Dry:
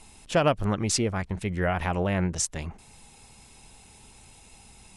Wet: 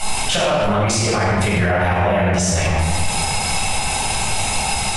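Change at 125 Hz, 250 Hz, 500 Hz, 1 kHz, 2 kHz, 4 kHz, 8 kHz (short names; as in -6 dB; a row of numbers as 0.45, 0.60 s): +10.5, +8.0, +9.5, +13.0, +14.0, +15.5, +12.5 dB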